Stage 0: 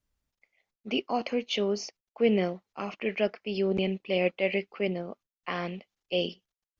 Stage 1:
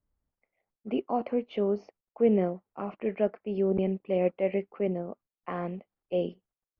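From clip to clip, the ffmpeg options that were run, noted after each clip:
-af "lowpass=1.1k,volume=1dB"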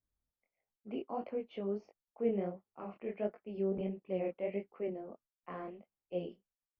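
-af "flanger=delay=18.5:depth=7.5:speed=1.5,volume=-6.5dB"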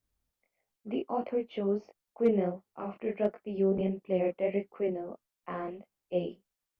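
-af "asoftclip=type=hard:threshold=-23.5dB,volume=7dB"

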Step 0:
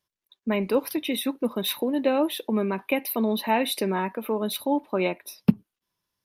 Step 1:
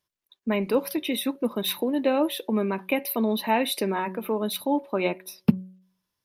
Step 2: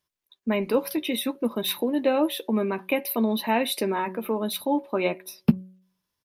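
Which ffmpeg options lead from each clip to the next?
-af "bandreject=f=186:t=h:w=4,bandreject=f=372:t=h:w=4,bandreject=f=558:t=h:w=4"
-filter_complex "[0:a]asplit=2[a][b];[b]adelay=13,volume=-12dB[c];[a][c]amix=inputs=2:normalize=0"

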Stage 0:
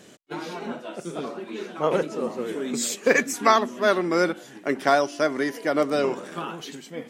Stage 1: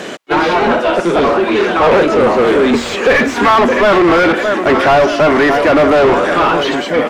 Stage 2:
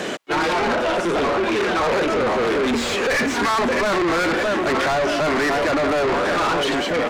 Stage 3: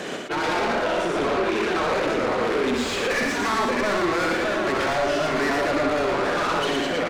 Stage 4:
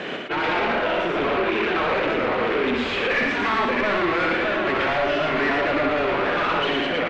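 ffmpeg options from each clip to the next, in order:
-filter_complex "[0:a]asplit=2[a][b];[b]adelay=615,lowpass=f=4.3k:p=1,volume=-19dB,asplit=2[c][d];[d]adelay=615,lowpass=f=4.3k:p=1,volume=0.49,asplit=2[e][f];[f]adelay=615,lowpass=f=4.3k:p=1,volume=0.49,asplit=2[g][h];[h]adelay=615,lowpass=f=4.3k:p=1,volume=0.49[i];[a][c][e][g][i]amix=inputs=5:normalize=0,asplit=2[j][k];[k]highpass=f=720:p=1,volume=36dB,asoftclip=type=tanh:threshold=-3dB[l];[j][l]amix=inputs=2:normalize=0,lowpass=f=1.7k:p=1,volume=-6dB,acrossover=split=4500[m][n];[n]acompressor=threshold=-40dB:ratio=4:attack=1:release=60[o];[m][o]amix=inputs=2:normalize=0,volume=2dB"
-filter_complex "[0:a]acrossover=split=1200[a][b];[a]alimiter=limit=-10.5dB:level=0:latency=1[c];[c][b]amix=inputs=2:normalize=0,asoftclip=type=tanh:threshold=-17.5dB"
-af "aecho=1:1:64.14|116.6:0.501|0.708,volume=-5.5dB"
-af "lowpass=f=2.8k:t=q:w=1.6"

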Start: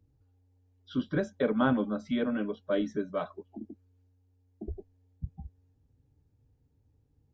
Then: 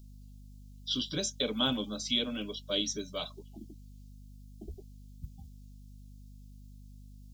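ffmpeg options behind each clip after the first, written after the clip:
-af "aexciter=amount=15.1:drive=7.7:freq=2.8k,aeval=exprs='val(0)+0.00708*(sin(2*PI*50*n/s)+sin(2*PI*2*50*n/s)/2+sin(2*PI*3*50*n/s)/3+sin(2*PI*4*50*n/s)/4+sin(2*PI*5*50*n/s)/5)':c=same,volume=-6.5dB"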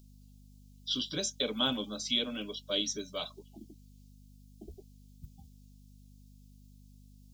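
-af "lowshelf=f=170:g=-7"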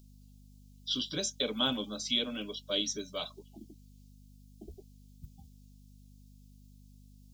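-af anull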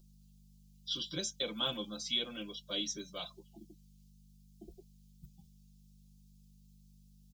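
-af "aecho=1:1:5.8:0.79,volume=-6dB"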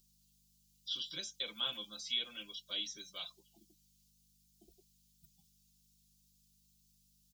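-filter_complex "[0:a]tiltshelf=f=1.2k:g=-9,acrossover=split=3600[a][b];[b]acompressor=threshold=-41dB:ratio=4:attack=1:release=60[c];[a][c]amix=inputs=2:normalize=0,volume=-5.5dB"

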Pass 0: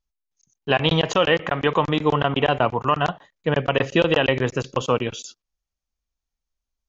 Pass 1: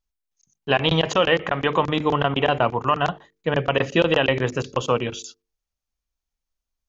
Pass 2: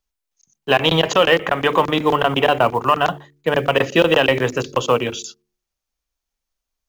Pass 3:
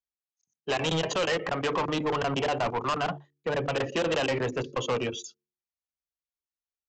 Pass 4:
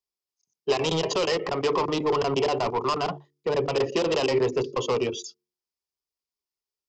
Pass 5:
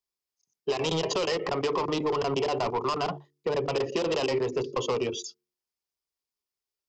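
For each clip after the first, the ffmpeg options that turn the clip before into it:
-af "bandreject=f=50:t=h:w=6,bandreject=f=100:t=h:w=6,bandreject=f=150:t=h:w=6,bandreject=f=200:t=h:w=6,bandreject=f=250:t=h:w=6,bandreject=f=300:t=h:w=6,bandreject=f=350:t=h:w=6,bandreject=f=400:t=h:w=6,bandreject=f=450:t=h:w=6"
-filter_complex "[0:a]bandreject=f=72.01:t=h:w=4,bandreject=f=144.02:t=h:w=4,bandreject=f=216.03:t=h:w=4,bandreject=f=288.04:t=h:w=4,bandreject=f=360.05:t=h:w=4,acrossover=split=240[a][b];[b]acontrast=29[c];[a][c]amix=inputs=2:normalize=0,acrusher=bits=8:mode=log:mix=0:aa=0.000001"
-af "highpass=55,afftdn=nr=15:nf=-28,aresample=16000,asoftclip=type=tanh:threshold=-19dB,aresample=44100,volume=-4.5dB"
-af "equalizer=f=400:t=o:w=0.33:g=11,equalizer=f=1k:t=o:w=0.33:g=5,equalizer=f=1.6k:t=o:w=0.33:g=-8,equalizer=f=5k:t=o:w=0.33:g=10"
-af "acompressor=threshold=-24dB:ratio=6"

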